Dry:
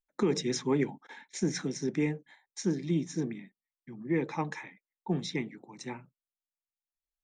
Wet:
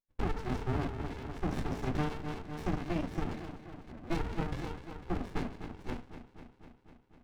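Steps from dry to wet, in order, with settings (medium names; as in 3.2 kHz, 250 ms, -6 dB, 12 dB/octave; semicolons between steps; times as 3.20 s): high-pass 44 Hz; bucket-brigade echo 250 ms, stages 4096, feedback 70%, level -12.5 dB; dynamic bell 590 Hz, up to +4 dB, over -46 dBFS, Q 2.6; vowel filter e; reverberation RT60 0.30 s, pre-delay 3 ms, DRR -0.5 dB; compression 6:1, threshold -31 dBFS, peak gain reduction 10.5 dB; 1.51–3.92 s: treble shelf 2.2 kHz +11 dB; sliding maximum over 65 samples; trim +7 dB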